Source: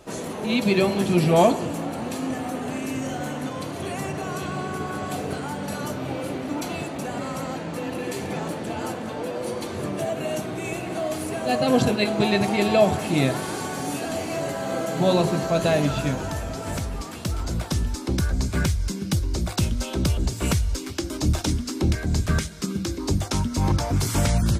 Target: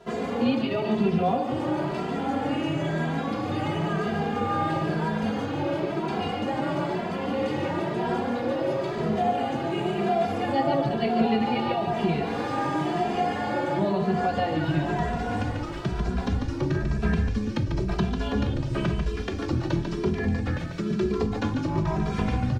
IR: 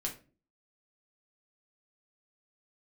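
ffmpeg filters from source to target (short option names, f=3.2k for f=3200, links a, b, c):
-filter_complex "[0:a]lowpass=5.4k,acrossover=split=3700[a][b];[b]acompressor=threshold=-47dB:ratio=4:attack=1:release=60[c];[a][c]amix=inputs=2:normalize=0,highpass=45,aemphasis=mode=reproduction:type=50kf,acompressor=threshold=-24dB:ratio=10,asplit=2[d][e];[e]asetrate=22050,aresample=44100,atempo=2,volume=-15dB[f];[d][f]amix=inputs=2:normalize=0,aeval=exprs='sgn(val(0))*max(abs(val(0))-0.00112,0)':c=same,aecho=1:1:157:0.501,asplit=2[g][h];[1:a]atrim=start_sample=2205[i];[h][i]afir=irnorm=-1:irlink=0,volume=-1.5dB[j];[g][j]amix=inputs=2:normalize=0,asetrate=48000,aresample=44100,asplit=2[k][l];[l]adelay=2.6,afreqshift=1[m];[k][m]amix=inputs=2:normalize=1"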